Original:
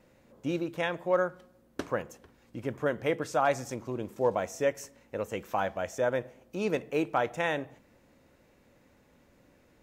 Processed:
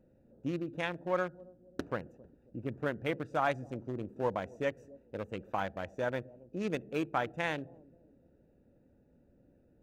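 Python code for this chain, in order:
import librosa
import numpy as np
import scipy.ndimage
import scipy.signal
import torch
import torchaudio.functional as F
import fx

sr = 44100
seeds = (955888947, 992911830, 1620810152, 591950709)

y = fx.wiener(x, sr, points=41)
y = fx.dynamic_eq(y, sr, hz=520.0, q=1.1, threshold_db=-38.0, ratio=4.0, max_db=-5)
y = fx.echo_bbd(y, sr, ms=269, stages=1024, feedback_pct=46, wet_db=-20.5)
y = y * librosa.db_to_amplitude(-1.0)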